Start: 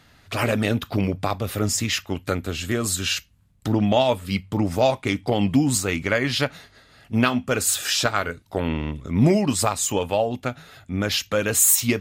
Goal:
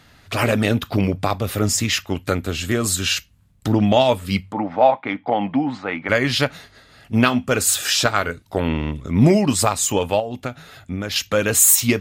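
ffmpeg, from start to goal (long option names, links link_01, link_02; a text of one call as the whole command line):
ffmpeg -i in.wav -filter_complex "[0:a]asplit=3[link_01][link_02][link_03];[link_01]afade=type=out:start_time=4.51:duration=0.02[link_04];[link_02]highpass=280,equalizer=frequency=390:width_type=q:width=4:gain=-10,equalizer=frequency=820:width_type=q:width=4:gain=7,equalizer=frequency=2700:width_type=q:width=4:gain=-7,lowpass=frequency=2800:width=0.5412,lowpass=frequency=2800:width=1.3066,afade=type=in:start_time=4.51:duration=0.02,afade=type=out:start_time=6.08:duration=0.02[link_05];[link_03]afade=type=in:start_time=6.08:duration=0.02[link_06];[link_04][link_05][link_06]amix=inputs=3:normalize=0,asettb=1/sr,asplit=3[link_07][link_08][link_09];[link_07]atrim=end=10.194[link_10];[link_08]atrim=start=10.19:end=11.16,asetpts=PTS-STARTPTS,afade=type=in:duration=0.004:curve=qsin,afade=type=out:start_time=0.966:duration=0.004:curve=qsin,acompressor=threshold=-26dB:ratio=6[link_11];[link_09]atrim=start=11.156[link_12];[link_10][link_11]acrossfade=duration=0.004:curve1=hsin:curve2=qsin[link_13];[link_13][link_12]acrossfade=duration=0.004:curve1=qsin:curve2=hsin,volume=3.5dB" out.wav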